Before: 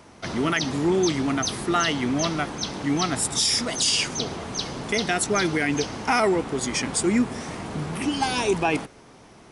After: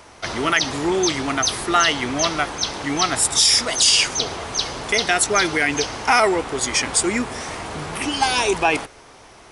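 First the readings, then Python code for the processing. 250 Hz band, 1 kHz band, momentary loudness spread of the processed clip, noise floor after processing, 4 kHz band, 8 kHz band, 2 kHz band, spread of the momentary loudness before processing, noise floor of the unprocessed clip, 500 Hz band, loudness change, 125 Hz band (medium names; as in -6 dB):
-1.5 dB, +6.0 dB, 11 LU, -46 dBFS, +7.0 dB, +7.0 dB, +6.5 dB, 9 LU, -49 dBFS, +2.5 dB, +5.0 dB, -2.5 dB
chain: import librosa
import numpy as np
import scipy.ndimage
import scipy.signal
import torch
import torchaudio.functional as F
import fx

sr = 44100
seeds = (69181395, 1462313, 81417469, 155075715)

y = fx.peak_eq(x, sr, hz=190.0, db=-12.5, octaves=1.8)
y = y * 10.0 ** (7.0 / 20.0)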